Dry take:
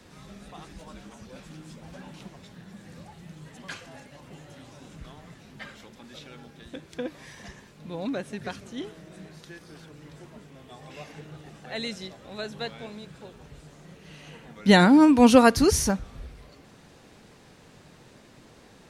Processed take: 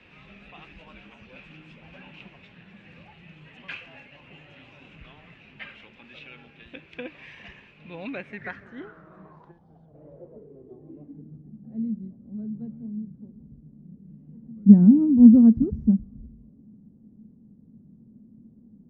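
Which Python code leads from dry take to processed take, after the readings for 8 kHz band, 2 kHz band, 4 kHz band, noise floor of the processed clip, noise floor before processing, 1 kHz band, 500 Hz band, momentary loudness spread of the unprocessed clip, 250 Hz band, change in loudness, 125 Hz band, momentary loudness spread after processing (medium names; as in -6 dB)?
under -35 dB, -9.5 dB, under -15 dB, -55 dBFS, -53 dBFS, -20.0 dB, -13.0 dB, 25 LU, +5.0 dB, +4.0 dB, +5.0 dB, 24 LU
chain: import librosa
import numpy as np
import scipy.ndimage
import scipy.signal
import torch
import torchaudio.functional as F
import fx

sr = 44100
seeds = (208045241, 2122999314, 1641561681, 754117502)

y = fx.rattle_buzz(x, sr, strikes_db=-24.0, level_db=-21.0)
y = fx.filter_sweep_lowpass(y, sr, from_hz=2600.0, to_hz=220.0, start_s=8.09, end_s=11.42, q=6.5)
y = fx.spec_box(y, sr, start_s=9.51, length_s=0.43, low_hz=260.0, high_hz=2900.0, gain_db=-11)
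y = y * librosa.db_to_amplitude(-5.0)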